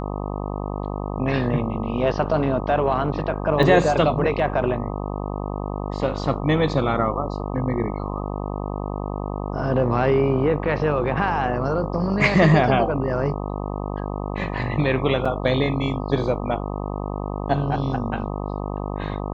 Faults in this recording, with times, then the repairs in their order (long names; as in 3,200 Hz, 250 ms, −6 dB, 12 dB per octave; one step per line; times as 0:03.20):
mains buzz 50 Hz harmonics 25 −28 dBFS
0:03.63: drop-out 2.5 ms
0:15.25: drop-out 4.9 ms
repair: hum removal 50 Hz, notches 25
repair the gap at 0:03.63, 2.5 ms
repair the gap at 0:15.25, 4.9 ms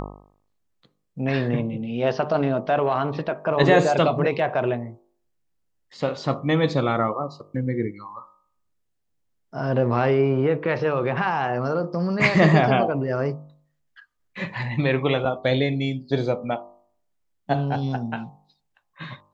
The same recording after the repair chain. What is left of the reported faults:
none of them is left